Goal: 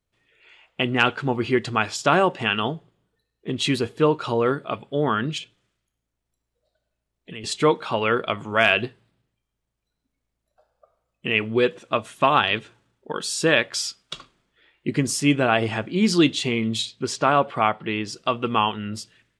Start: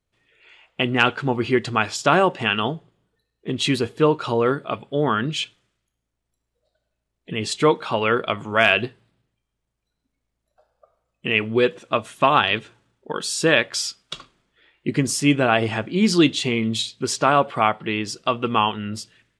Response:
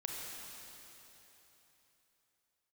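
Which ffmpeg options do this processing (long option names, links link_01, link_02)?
-filter_complex "[0:a]asettb=1/sr,asplit=3[link_01][link_02][link_03];[link_01]atrim=end=5.384[link_04];[link_02]atrim=start=5.38:end=7.44,asetpts=PTS-STARTPTS,afade=type=in:duration=0.004:curve=qsin,afade=type=out:start_time=2.056:duration=0.004:curve=qsin,acrossover=split=590|1900[link_05][link_06][link_07];[link_05]acompressor=threshold=-37dB:ratio=4[link_08];[link_06]acompressor=threshold=-51dB:ratio=4[link_09];[link_07]acompressor=threshold=-37dB:ratio=4[link_10];[link_08][link_09][link_10]amix=inputs=3:normalize=0[link_11];[link_03]atrim=start=7.436[link_12];[link_04][link_11]acrossfade=duration=0.004:curve1=hsin:curve2=qsin[link_13];[link_13][link_12]acrossfade=duration=0.004:curve1=qsin:curve2=hsin,asettb=1/sr,asplit=3[link_14][link_15][link_16];[link_14]atrim=end=16.854[link_17];[link_15]atrim=start=16.85:end=18.13,asetpts=PTS-STARTPTS,afade=type=in:duration=0.004:curve=qsin,afade=type=out:start_time=1.276:duration=0.004:curve=qsin,highshelf=frequency=8200:gain=-9.5[link_18];[link_16]atrim=start=18.126[link_19];[link_17][link_18]acrossfade=duration=0.004:curve1=hsin:curve2=qsin[link_20];[link_20][link_19]acrossfade=duration=0.004:curve1=qsin:curve2=hsin,volume=-1.5dB"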